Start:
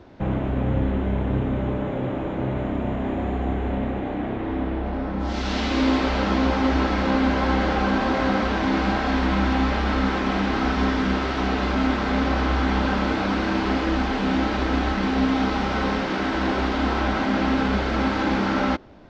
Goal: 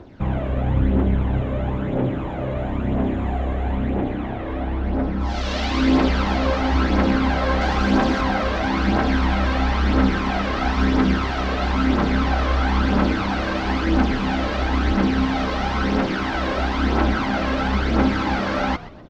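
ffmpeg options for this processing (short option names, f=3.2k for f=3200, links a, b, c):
-filter_complex "[0:a]asettb=1/sr,asplit=3[a][b][c];[a]atrim=end=7.614[d];[b]atrim=start=7.61:end=8.21,asetpts=PTS-STARTPTS,afade=t=in:d=0.004:c=qsin,afade=t=out:st=0.596:d=0.004:c=qsin,highshelf=f=5.7k:g=9.5[e];[c]atrim=start=8.206[f];[d][e]acrossfade=d=0.004:c1=hsin:c2=qsin[g];[g][f]acrossfade=d=0.004:c1=qsin:c2=hsin,aphaser=in_gain=1:out_gain=1:delay=1.9:decay=0.51:speed=1:type=triangular,asplit=4[h][i][j][k];[i]adelay=125,afreqshift=-94,volume=-16dB[l];[j]adelay=250,afreqshift=-188,volume=-25.1dB[m];[k]adelay=375,afreqshift=-282,volume=-34.2dB[n];[h][l][m][n]amix=inputs=4:normalize=0"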